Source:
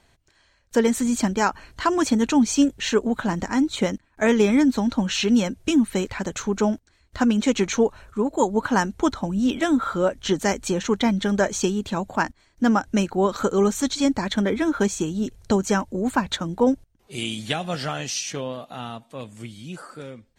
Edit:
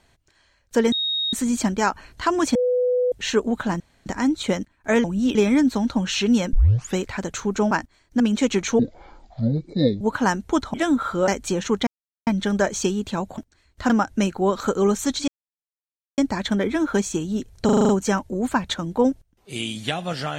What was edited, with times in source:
0.92 s: add tone 3.75 kHz -21 dBFS 0.41 s
2.14–2.71 s: bleep 497 Hz -17 dBFS
3.39 s: insert room tone 0.26 s
5.55 s: tape start 0.43 s
6.73–7.25 s: swap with 12.17–12.66 s
7.84–8.51 s: speed 55%
9.24–9.55 s: move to 4.37 s
10.09–10.47 s: delete
11.06 s: insert silence 0.40 s
14.04 s: insert silence 0.90 s
15.51 s: stutter 0.04 s, 7 plays

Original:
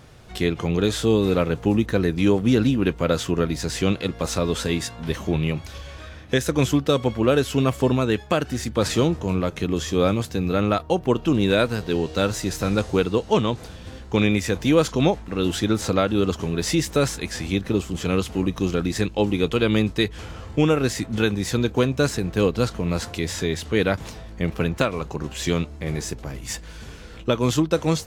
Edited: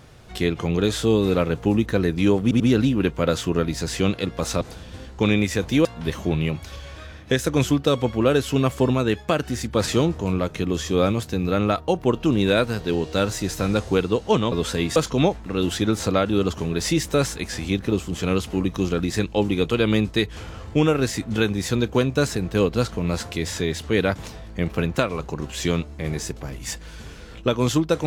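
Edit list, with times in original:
2.42 s: stutter 0.09 s, 3 plays
4.43–4.87 s: swap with 13.54–14.78 s

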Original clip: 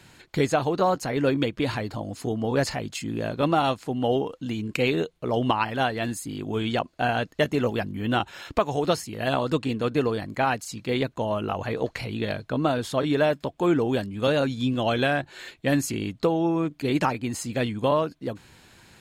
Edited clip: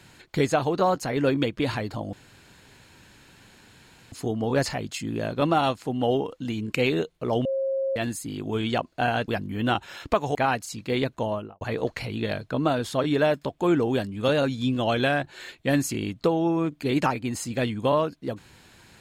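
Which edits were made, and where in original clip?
2.13 s: insert room tone 1.99 s
5.46–5.97 s: bleep 538 Hz -23 dBFS
7.29–7.73 s: delete
8.80–10.34 s: delete
11.22–11.60 s: studio fade out

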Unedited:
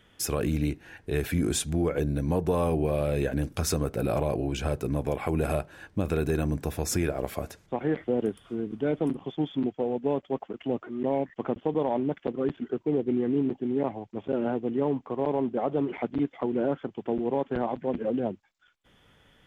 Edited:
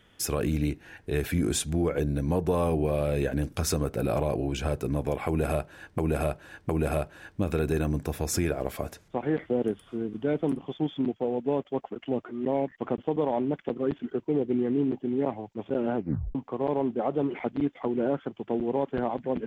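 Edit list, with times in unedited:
5.27–5.98 s: loop, 3 plays
14.54 s: tape stop 0.39 s

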